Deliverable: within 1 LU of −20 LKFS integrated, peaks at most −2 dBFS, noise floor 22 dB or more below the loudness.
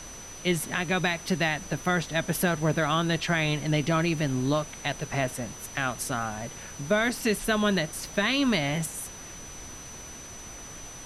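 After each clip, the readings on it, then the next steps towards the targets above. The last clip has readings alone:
interfering tone 6,000 Hz; level of the tone −43 dBFS; background noise floor −43 dBFS; target noise floor −49 dBFS; integrated loudness −27.0 LKFS; sample peak −13.0 dBFS; target loudness −20.0 LKFS
→ notch filter 6,000 Hz, Q 30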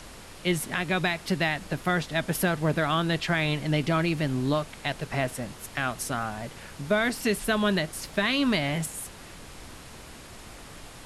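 interfering tone none found; background noise floor −45 dBFS; target noise floor −50 dBFS
→ noise reduction from a noise print 6 dB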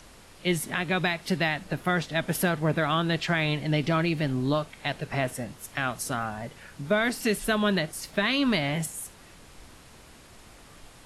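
background noise floor −51 dBFS; integrated loudness −27.5 LKFS; sample peak −12.5 dBFS; target loudness −20.0 LKFS
→ level +7.5 dB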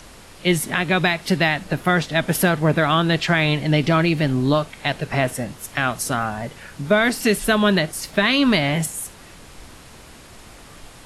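integrated loudness −20.0 LKFS; sample peak −5.0 dBFS; background noise floor −44 dBFS

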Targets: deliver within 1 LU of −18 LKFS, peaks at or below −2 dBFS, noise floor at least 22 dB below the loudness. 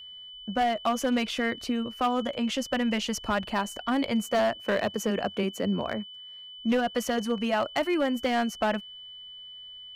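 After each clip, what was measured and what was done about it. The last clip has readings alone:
share of clipped samples 1.7%; peaks flattened at −19.5 dBFS; interfering tone 3,000 Hz; level of the tone −42 dBFS; integrated loudness −28.0 LKFS; sample peak −19.5 dBFS; target loudness −18.0 LKFS
→ clipped peaks rebuilt −19.5 dBFS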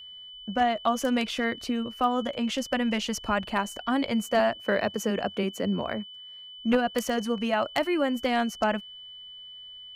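share of clipped samples 0.0%; interfering tone 3,000 Hz; level of the tone −42 dBFS
→ notch filter 3,000 Hz, Q 30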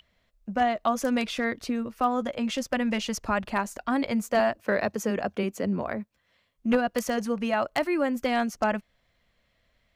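interfering tone none found; integrated loudness −28.0 LKFS; sample peak −10.5 dBFS; target loudness −18.0 LKFS
→ level +10 dB
brickwall limiter −2 dBFS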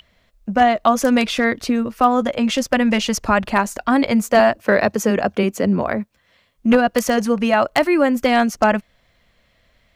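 integrated loudness −18.0 LKFS; sample peak −2.0 dBFS; background noise floor −61 dBFS

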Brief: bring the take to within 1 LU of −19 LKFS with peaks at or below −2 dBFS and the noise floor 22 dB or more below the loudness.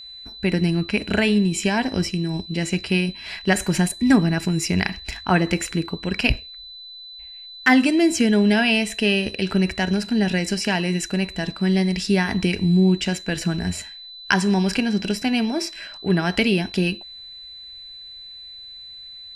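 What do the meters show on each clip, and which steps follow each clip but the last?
interfering tone 4,000 Hz; level of the tone −37 dBFS; integrated loudness −21.0 LKFS; sample peak −2.5 dBFS; target loudness −19.0 LKFS
→ notch filter 4,000 Hz, Q 30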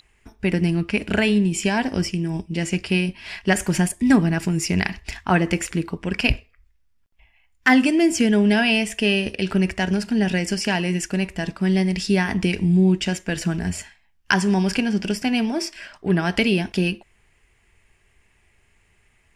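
interfering tone none found; integrated loudness −21.5 LKFS; sample peak −2.5 dBFS; target loudness −19.0 LKFS
→ level +2.5 dB
brickwall limiter −2 dBFS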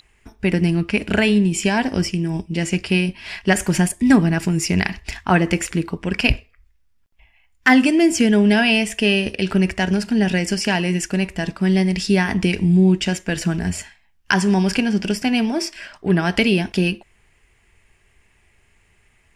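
integrated loudness −19.0 LKFS; sample peak −2.0 dBFS; background noise floor −59 dBFS

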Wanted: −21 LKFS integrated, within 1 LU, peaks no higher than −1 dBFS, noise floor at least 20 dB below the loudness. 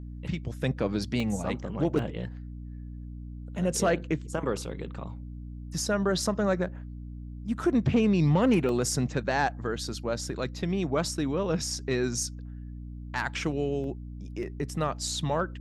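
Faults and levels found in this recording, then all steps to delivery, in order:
number of dropouts 6; longest dropout 1.6 ms; mains hum 60 Hz; hum harmonics up to 300 Hz; level of the hum −37 dBFS; integrated loudness −29.0 LKFS; sample peak −12.5 dBFS; target loudness −21.0 LKFS
→ repair the gap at 0:01.20/0:01.99/0:08.69/0:11.06/0:13.84/0:14.43, 1.6 ms
mains-hum notches 60/120/180/240/300 Hz
level +8 dB

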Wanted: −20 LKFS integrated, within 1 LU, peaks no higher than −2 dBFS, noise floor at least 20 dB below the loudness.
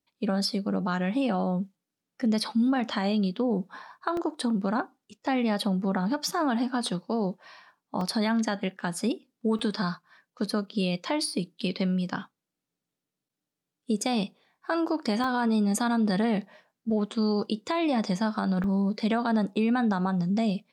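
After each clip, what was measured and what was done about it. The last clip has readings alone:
number of dropouts 5; longest dropout 2.2 ms; integrated loudness −28.0 LKFS; sample peak −13.0 dBFS; target loudness −20.0 LKFS
→ repair the gap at 0:04.17/0:08.01/0:09.59/0:15.24/0:18.64, 2.2 ms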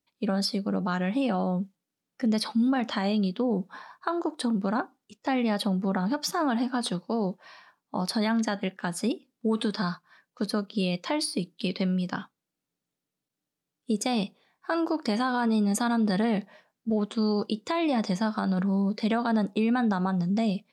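number of dropouts 0; integrated loudness −28.0 LKFS; sample peak −13.0 dBFS; target loudness −20.0 LKFS
→ level +8 dB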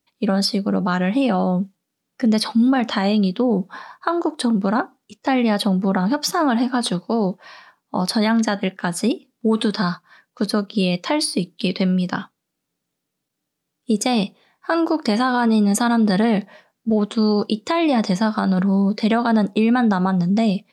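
integrated loudness −20.0 LKFS; sample peak −5.0 dBFS; background noise floor −79 dBFS

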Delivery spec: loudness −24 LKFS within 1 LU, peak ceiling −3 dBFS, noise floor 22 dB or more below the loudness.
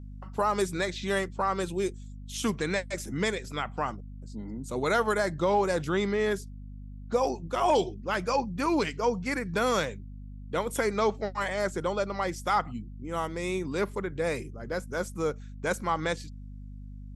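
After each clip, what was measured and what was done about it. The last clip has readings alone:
mains hum 50 Hz; hum harmonics up to 250 Hz; level of the hum −39 dBFS; integrated loudness −29.5 LKFS; sample peak −13.5 dBFS; target loudness −24.0 LKFS
→ hum removal 50 Hz, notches 5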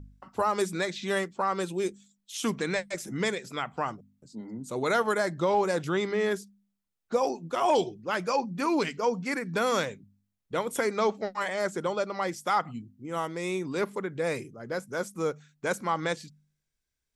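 mains hum none found; integrated loudness −30.0 LKFS; sample peak −13.5 dBFS; target loudness −24.0 LKFS
→ level +6 dB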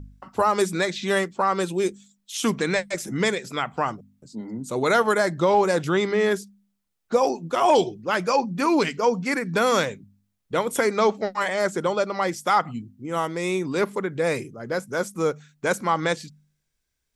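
integrated loudness −24.0 LKFS; sample peak −7.5 dBFS; background noise floor −76 dBFS

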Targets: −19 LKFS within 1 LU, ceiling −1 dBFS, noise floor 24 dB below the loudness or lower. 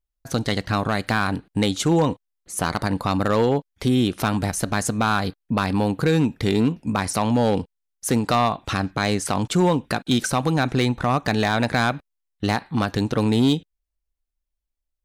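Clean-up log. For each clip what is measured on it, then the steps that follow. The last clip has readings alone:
share of clipped samples 0.9%; peaks flattened at −12.0 dBFS; integrated loudness −22.5 LKFS; sample peak −12.0 dBFS; target loudness −19.0 LKFS
→ clipped peaks rebuilt −12 dBFS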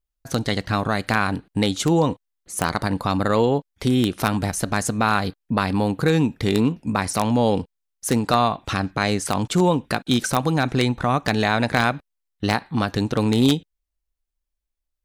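share of clipped samples 0.0%; integrated loudness −22.0 LKFS; sample peak −3.0 dBFS; target loudness −19.0 LKFS
→ level +3 dB
brickwall limiter −1 dBFS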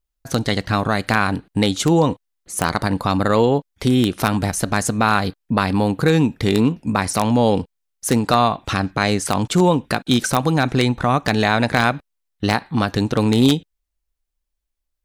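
integrated loudness −19.0 LKFS; sample peak −1.0 dBFS; background noise floor −77 dBFS

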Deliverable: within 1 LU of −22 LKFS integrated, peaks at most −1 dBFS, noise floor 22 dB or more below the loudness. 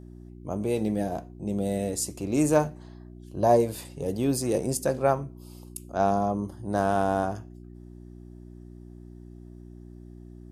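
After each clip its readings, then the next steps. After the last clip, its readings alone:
mains hum 60 Hz; hum harmonics up to 360 Hz; level of the hum −43 dBFS; integrated loudness −27.0 LKFS; sample peak −8.0 dBFS; target loudness −22.0 LKFS
→ hum removal 60 Hz, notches 6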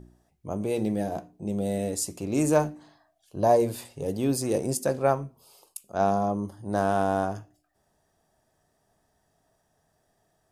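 mains hum none found; integrated loudness −27.0 LKFS; sample peak −8.5 dBFS; target loudness −22.0 LKFS
→ level +5 dB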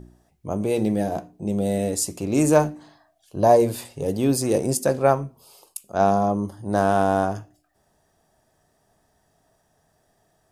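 integrated loudness −22.0 LKFS; sample peak −3.5 dBFS; background noise floor −67 dBFS

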